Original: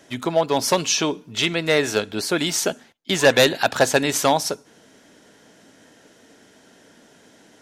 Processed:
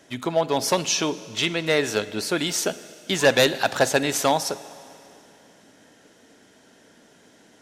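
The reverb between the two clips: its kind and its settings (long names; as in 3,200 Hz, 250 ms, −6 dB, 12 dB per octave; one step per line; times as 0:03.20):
four-comb reverb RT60 2.8 s, DRR 16 dB
level −2.5 dB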